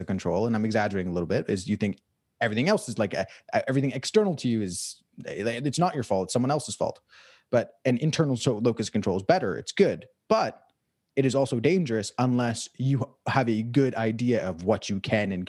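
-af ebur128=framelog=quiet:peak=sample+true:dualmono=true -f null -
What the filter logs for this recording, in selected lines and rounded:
Integrated loudness:
  I:         -23.5 LUFS
  Threshold: -33.8 LUFS
Loudness range:
  LRA:         1.9 LU
  Threshold: -43.8 LUFS
  LRA low:   -24.8 LUFS
  LRA high:  -22.8 LUFS
Sample peak:
  Peak:       -7.0 dBFS
True peak:
  Peak:       -7.0 dBFS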